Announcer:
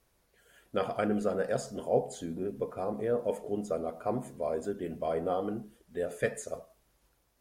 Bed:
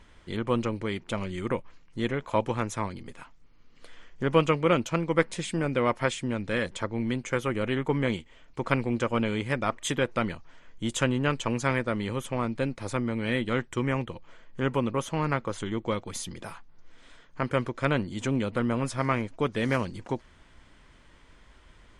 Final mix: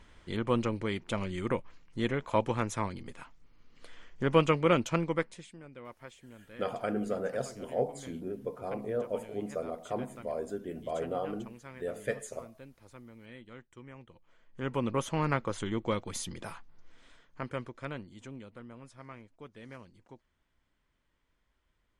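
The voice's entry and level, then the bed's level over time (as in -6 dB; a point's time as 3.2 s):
5.85 s, -3.0 dB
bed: 5.04 s -2 dB
5.58 s -22 dB
13.95 s -22 dB
14.93 s -2 dB
16.71 s -2 dB
18.68 s -21.5 dB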